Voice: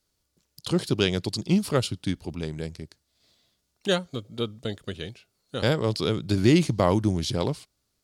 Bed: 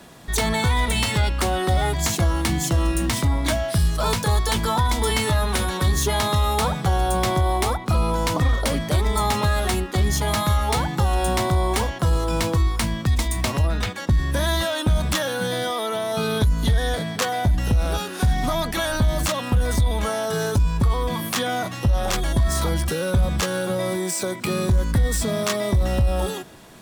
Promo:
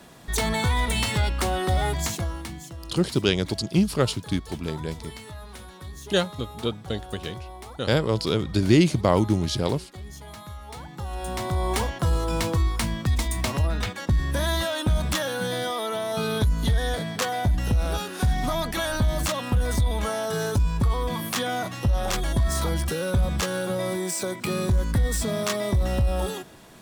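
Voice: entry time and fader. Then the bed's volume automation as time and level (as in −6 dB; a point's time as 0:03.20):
2.25 s, +1.5 dB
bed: 0:01.96 −3 dB
0:02.76 −19.5 dB
0:10.62 −19.5 dB
0:11.73 −3 dB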